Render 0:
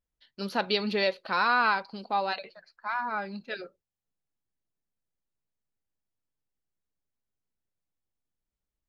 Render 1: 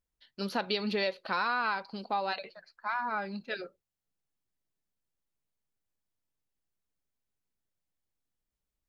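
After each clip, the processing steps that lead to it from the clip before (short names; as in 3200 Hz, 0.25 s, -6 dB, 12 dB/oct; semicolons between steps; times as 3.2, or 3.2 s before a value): compressor 3:1, threshold -28 dBFS, peak gain reduction 7 dB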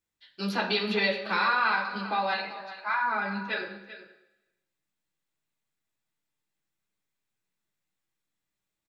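echo 0.391 s -14 dB; reverb RT60 1.0 s, pre-delay 3 ms, DRR -4 dB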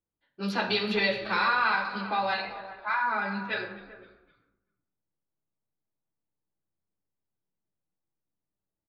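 low-pass opened by the level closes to 770 Hz, open at -25 dBFS; frequency-shifting echo 0.257 s, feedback 42%, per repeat -85 Hz, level -21 dB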